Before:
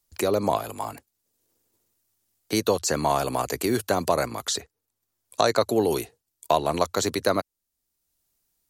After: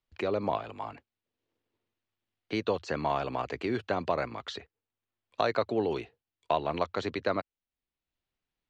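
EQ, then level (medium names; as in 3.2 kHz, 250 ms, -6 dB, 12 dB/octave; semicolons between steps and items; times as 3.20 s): four-pole ladder low-pass 3.7 kHz, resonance 30%; 0.0 dB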